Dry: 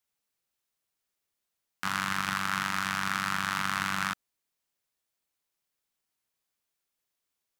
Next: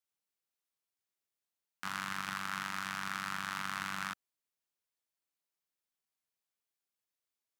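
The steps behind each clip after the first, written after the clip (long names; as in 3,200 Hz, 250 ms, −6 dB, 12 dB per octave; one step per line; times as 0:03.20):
low-shelf EQ 85 Hz −8.5 dB
level −8 dB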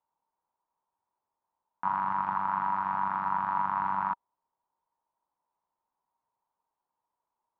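in parallel at 0 dB: brickwall limiter −28 dBFS, peak gain reduction 9.5 dB
on the sum: low-pass with resonance 940 Hz, resonance Q 11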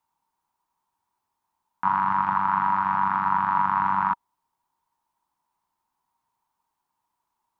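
parametric band 540 Hz −13 dB 0.77 octaves
level +9 dB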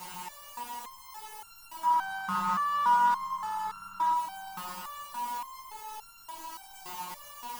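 converter with a step at zero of −26.5 dBFS
delay that swaps between a low-pass and a high-pass 445 ms, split 1,000 Hz, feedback 55%, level −6 dB
step-sequenced resonator 3.5 Hz 180–1,400 Hz
level +4 dB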